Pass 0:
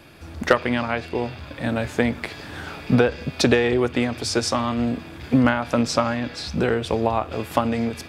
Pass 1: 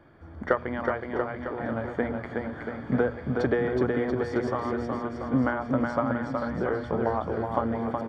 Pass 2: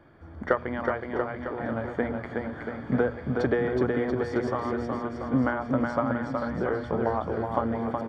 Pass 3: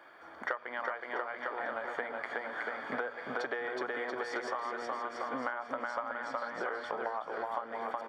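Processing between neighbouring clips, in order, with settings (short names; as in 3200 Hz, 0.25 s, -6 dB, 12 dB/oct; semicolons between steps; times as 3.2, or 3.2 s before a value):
polynomial smoothing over 41 samples; notches 60/120/180/240 Hz; bouncing-ball echo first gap 0.37 s, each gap 0.85×, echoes 5; gain -6.5 dB
nothing audible
HPF 810 Hz 12 dB/oct; compressor 6:1, threshold -40 dBFS, peak gain reduction 16.5 dB; gain +7 dB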